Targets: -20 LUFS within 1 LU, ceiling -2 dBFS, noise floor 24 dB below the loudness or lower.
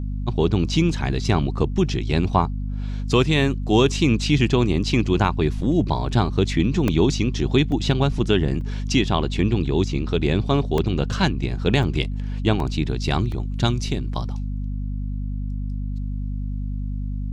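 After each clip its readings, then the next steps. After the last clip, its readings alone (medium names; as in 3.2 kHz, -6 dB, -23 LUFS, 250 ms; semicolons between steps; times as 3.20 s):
dropouts 7; longest dropout 1.9 ms; hum 50 Hz; highest harmonic 250 Hz; hum level -24 dBFS; loudness -22.0 LUFS; peak level -4.0 dBFS; loudness target -20.0 LUFS
-> interpolate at 6.88/7.72/8.61/10.78/11.83/12.60/13.32 s, 1.9 ms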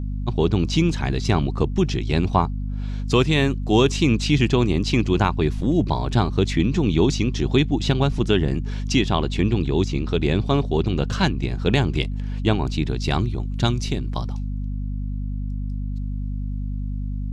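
dropouts 0; hum 50 Hz; highest harmonic 250 Hz; hum level -24 dBFS
-> hum notches 50/100/150/200/250 Hz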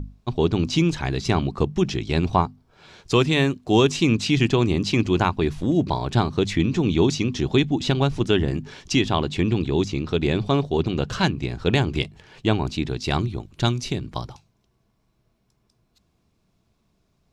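hum not found; loudness -22.5 LUFS; peak level -5.0 dBFS; loudness target -20.0 LUFS
-> trim +2.5 dB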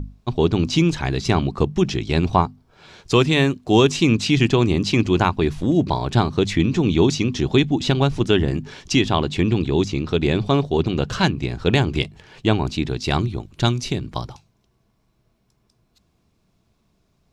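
loudness -20.0 LUFS; peak level -2.5 dBFS; noise floor -66 dBFS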